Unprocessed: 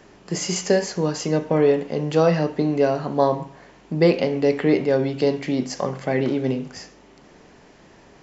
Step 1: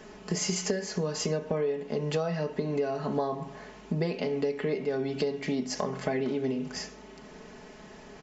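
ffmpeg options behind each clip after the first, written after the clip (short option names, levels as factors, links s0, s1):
-af "aecho=1:1:4.7:0.66,acompressor=threshold=0.0501:ratio=12"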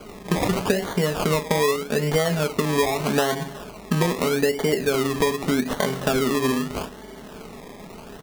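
-af "acrusher=samples=24:mix=1:aa=0.000001:lfo=1:lforange=14.4:lforate=0.81,volume=2.51"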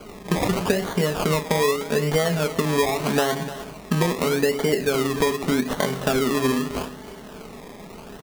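-af "aecho=1:1:301:0.188"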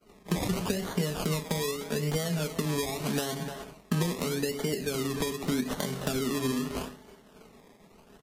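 -filter_complex "[0:a]acrossover=split=290|3000[s0][s1][s2];[s1]acompressor=threshold=0.0398:ratio=6[s3];[s0][s3][s2]amix=inputs=3:normalize=0,agate=range=0.0224:threshold=0.0282:ratio=3:detection=peak,volume=0.562" -ar 44100 -c:a libvorbis -b:a 48k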